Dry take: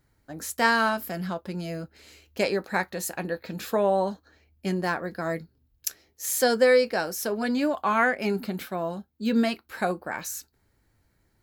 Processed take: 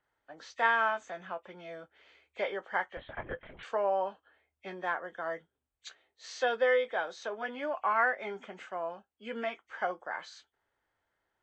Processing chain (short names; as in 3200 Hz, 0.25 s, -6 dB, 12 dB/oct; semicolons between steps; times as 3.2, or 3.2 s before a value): nonlinear frequency compression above 1800 Hz 1.5:1; three-band isolator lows -21 dB, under 480 Hz, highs -19 dB, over 3000 Hz; 2.97–3.63 LPC vocoder at 8 kHz whisper; gain -3.5 dB